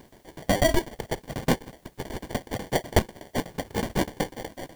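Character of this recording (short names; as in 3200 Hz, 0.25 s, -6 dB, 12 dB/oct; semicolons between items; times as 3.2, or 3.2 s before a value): aliases and images of a low sample rate 1300 Hz, jitter 0%; tremolo saw down 8.1 Hz, depth 100%; a quantiser's noise floor 12-bit, dither triangular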